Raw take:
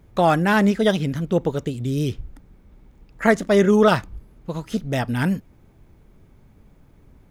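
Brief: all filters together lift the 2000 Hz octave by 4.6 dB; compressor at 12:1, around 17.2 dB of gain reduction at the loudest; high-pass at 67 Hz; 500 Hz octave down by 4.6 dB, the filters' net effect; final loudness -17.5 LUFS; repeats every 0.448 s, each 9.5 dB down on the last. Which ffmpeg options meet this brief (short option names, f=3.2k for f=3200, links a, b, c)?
-af "highpass=67,equalizer=f=500:t=o:g=-6.5,equalizer=f=2k:t=o:g=6.5,acompressor=threshold=-29dB:ratio=12,aecho=1:1:448|896|1344|1792:0.335|0.111|0.0365|0.012,volume=16.5dB"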